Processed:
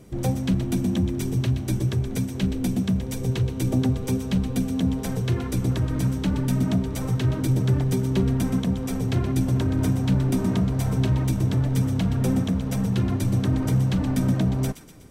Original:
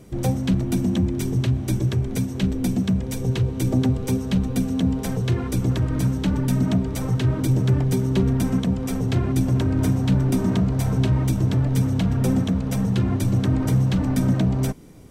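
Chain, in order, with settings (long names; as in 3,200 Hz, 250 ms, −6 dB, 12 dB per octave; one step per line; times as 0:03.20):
delay with a high-pass on its return 123 ms, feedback 53%, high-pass 1,500 Hz, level −10 dB
level −2 dB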